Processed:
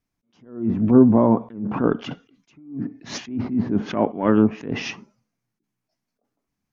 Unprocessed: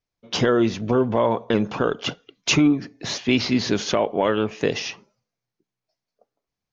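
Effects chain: graphic EQ 250/500/4000 Hz +9/-7/-7 dB; low-pass that closes with the level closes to 840 Hz, closed at -15 dBFS; attacks held to a fixed rise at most 130 dB/s; trim +5 dB

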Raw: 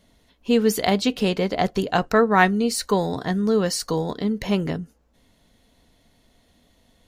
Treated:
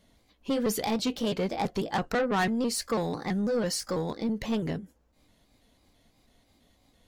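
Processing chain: pitch shift switched off and on +2 st, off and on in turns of 165 ms; saturation -17.5 dBFS, distortion -11 dB; trim -4 dB

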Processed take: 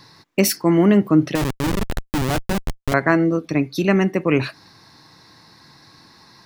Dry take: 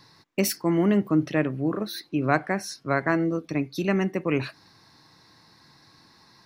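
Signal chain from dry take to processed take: 1.35–2.94 s: Schmitt trigger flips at -26.5 dBFS; trim +7 dB

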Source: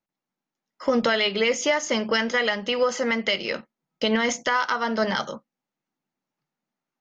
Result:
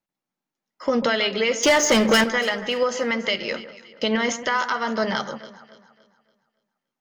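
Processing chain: 1.63–2.24 s: waveshaping leveller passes 3; echo whose repeats swap between lows and highs 142 ms, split 1.7 kHz, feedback 61%, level -12 dB

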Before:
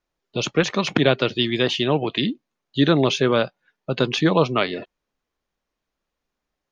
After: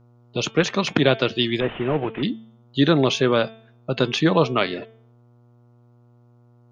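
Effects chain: 1.60–2.23 s: CVSD coder 16 kbps; mains buzz 120 Hz, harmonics 12, -54 dBFS -8 dB/octave; de-hum 223.4 Hz, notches 16

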